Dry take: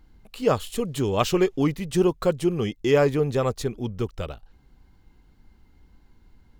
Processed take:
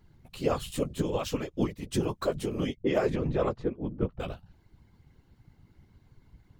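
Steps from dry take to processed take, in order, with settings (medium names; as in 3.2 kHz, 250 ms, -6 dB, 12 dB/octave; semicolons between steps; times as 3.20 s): 2.75–4.20 s: level-controlled noise filter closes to 420 Hz, open at -14.5 dBFS; peak limiter -15.5 dBFS, peak gain reduction 9 dB; flange 0.62 Hz, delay 7.4 ms, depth 9 ms, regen +14%; whisper effect; 0.83–1.92 s: upward expansion 1.5:1, over -47 dBFS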